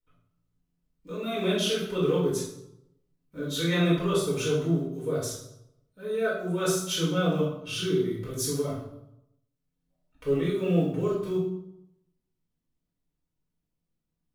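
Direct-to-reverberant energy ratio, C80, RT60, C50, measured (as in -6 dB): -7.0 dB, 6.0 dB, 0.80 s, 2.5 dB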